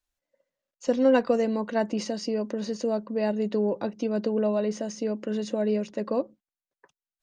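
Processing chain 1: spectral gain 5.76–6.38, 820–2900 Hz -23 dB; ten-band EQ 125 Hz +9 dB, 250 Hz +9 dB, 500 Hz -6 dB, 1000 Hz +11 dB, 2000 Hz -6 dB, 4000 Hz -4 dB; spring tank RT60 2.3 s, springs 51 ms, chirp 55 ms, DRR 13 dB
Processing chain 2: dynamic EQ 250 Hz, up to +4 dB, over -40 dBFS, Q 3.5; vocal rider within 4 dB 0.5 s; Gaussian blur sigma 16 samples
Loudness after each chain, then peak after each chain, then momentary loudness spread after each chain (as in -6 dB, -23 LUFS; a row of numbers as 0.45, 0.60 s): -21.0, -29.0 LUFS; -4.5, -15.5 dBFS; 8, 3 LU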